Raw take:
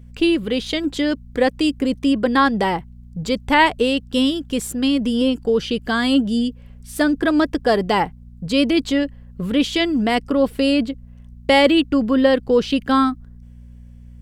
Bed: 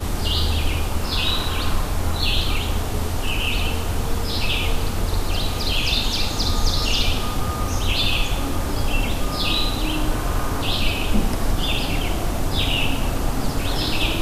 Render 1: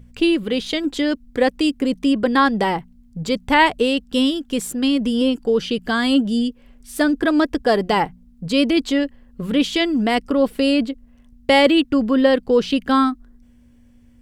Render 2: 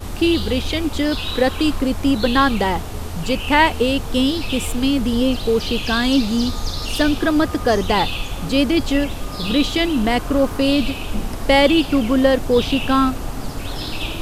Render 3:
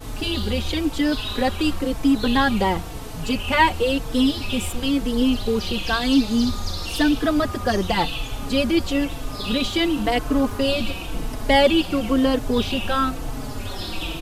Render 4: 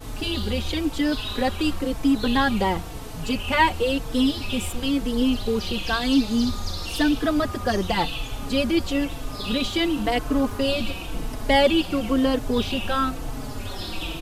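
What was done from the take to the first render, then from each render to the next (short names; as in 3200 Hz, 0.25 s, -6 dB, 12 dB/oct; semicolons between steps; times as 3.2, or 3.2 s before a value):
de-hum 60 Hz, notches 3
add bed -4.5 dB
endless flanger 4.1 ms -0.98 Hz
gain -2 dB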